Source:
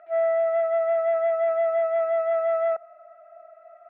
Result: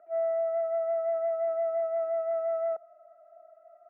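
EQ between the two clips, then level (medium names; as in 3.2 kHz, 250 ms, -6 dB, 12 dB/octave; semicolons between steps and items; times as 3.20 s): band-pass filter 350 Hz, Q 0.68; distance through air 230 m; -2.5 dB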